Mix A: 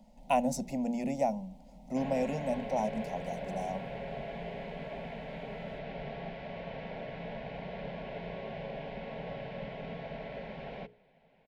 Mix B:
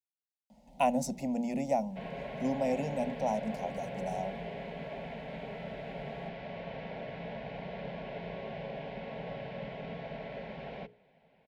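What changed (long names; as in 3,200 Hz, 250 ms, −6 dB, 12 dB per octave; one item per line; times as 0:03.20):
speech: entry +0.50 s
master: add high-pass filter 47 Hz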